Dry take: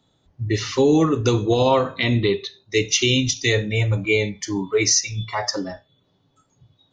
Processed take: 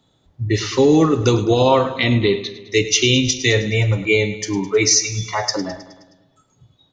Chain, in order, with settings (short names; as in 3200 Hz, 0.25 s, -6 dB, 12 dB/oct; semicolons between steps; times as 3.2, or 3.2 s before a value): feedback echo 0.105 s, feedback 58%, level -14.5 dB; gain +3 dB